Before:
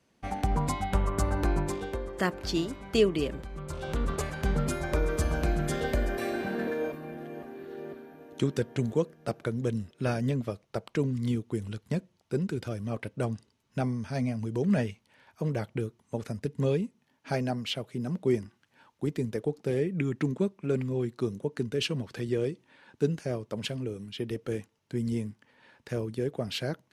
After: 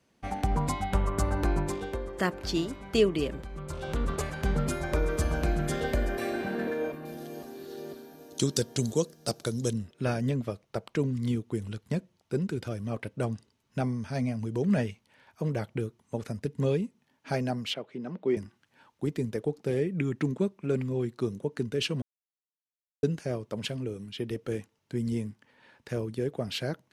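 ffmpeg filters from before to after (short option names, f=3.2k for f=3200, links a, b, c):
-filter_complex "[0:a]asettb=1/sr,asplit=3[a][b][c];[a]atrim=end=7.054[d];[b]atrim=start=7.05:end=9.73,asetpts=PTS-STARTPTS,afade=t=in:d=0.004:c=qsin,afade=t=out:st=2.676:d=0.004:c=qsin,highshelf=f=3.3k:t=q:w=1.5:g=13.5[e];[c]atrim=start=9.726[f];[d][e]acrossfade=d=0.004:c1=hsin:c2=qsin[g];[g][f]acrossfade=d=0.004:c1=qsin:c2=hsin,asettb=1/sr,asplit=3[h][i][j];[h]atrim=end=17.744[k];[i]atrim=start=17.74:end=18.37,asetpts=PTS-STARTPTS,afade=t=in:d=0.004:c=qsin,afade=t=out:st=0.626:d=0.004:c=qsin,highpass=250,lowpass=3.2k[l];[j]atrim=start=18.366[m];[k][l]acrossfade=d=0.004:c1=hsin:c2=qsin[n];[n][m]acrossfade=d=0.004:c1=qsin:c2=hsin,asplit=3[o][p][q];[o]atrim=end=22.02,asetpts=PTS-STARTPTS,afade=t=out:st=22.016:d=0.004:c=hsin[r];[p]atrim=start=22.02:end=23.03,asetpts=PTS-STARTPTS,volume=0[s];[q]atrim=start=23.03,asetpts=PTS-STARTPTS,afade=t=in:d=0.004:c=hsin[t];[r][s][t]concat=n=3:v=0:a=1"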